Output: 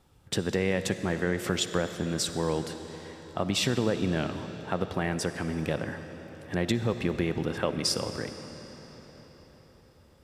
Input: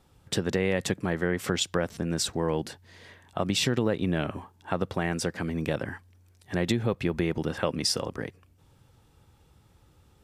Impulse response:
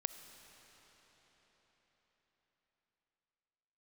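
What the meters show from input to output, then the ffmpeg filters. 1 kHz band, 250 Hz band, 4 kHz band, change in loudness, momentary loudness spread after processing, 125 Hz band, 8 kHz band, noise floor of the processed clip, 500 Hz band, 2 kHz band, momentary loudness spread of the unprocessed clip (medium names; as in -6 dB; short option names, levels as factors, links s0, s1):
-0.5 dB, -0.5 dB, -0.5 dB, -1.0 dB, 15 LU, -0.5 dB, -1.0 dB, -57 dBFS, -0.5 dB, -0.5 dB, 10 LU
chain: -filter_complex "[1:a]atrim=start_sample=2205[s0];[0:a][s0]afir=irnorm=-1:irlink=0"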